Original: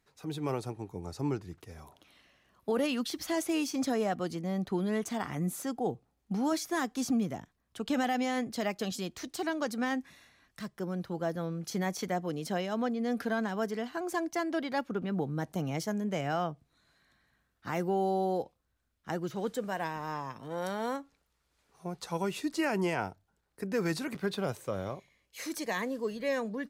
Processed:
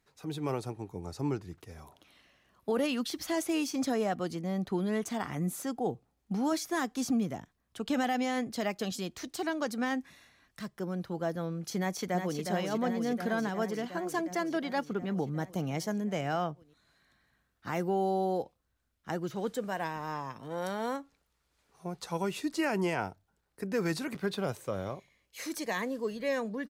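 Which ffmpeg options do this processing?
ffmpeg -i in.wav -filter_complex "[0:a]asplit=2[link_01][link_02];[link_02]afade=type=in:start_time=11.78:duration=0.01,afade=type=out:start_time=12.41:duration=0.01,aecho=0:1:360|720|1080|1440|1800|2160|2520|2880|3240|3600|3960|4320:0.501187|0.40095|0.32076|0.256608|0.205286|0.164229|0.131383|0.105107|0.0840853|0.0672682|0.0538146|0.0430517[link_03];[link_01][link_03]amix=inputs=2:normalize=0" out.wav

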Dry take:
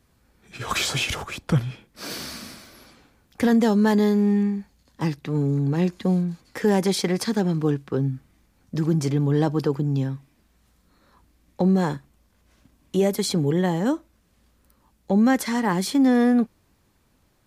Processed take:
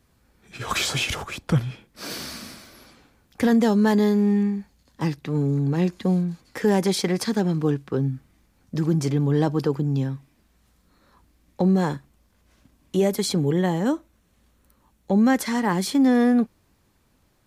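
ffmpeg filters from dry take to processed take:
ffmpeg -i in.wav -filter_complex "[0:a]asettb=1/sr,asplit=3[link_01][link_02][link_03];[link_01]atrim=end=13.364[link_04];[link_02]atrim=start=13.36:end=15.14,asetpts=PTS-STARTPTS,afade=type=in:duration=0.004:curve=qsin,afade=type=out:start_time=1.776:duration=0.004:curve=qsin,bandreject=frequency=4900:width=11[link_05];[link_03]atrim=start=15.136[link_06];[link_04][link_05]acrossfade=duration=0.004:curve1=hsin:curve2=qsin[link_07];[link_07][link_06]acrossfade=duration=0.004:curve1=qsin:curve2=hsin" out.wav

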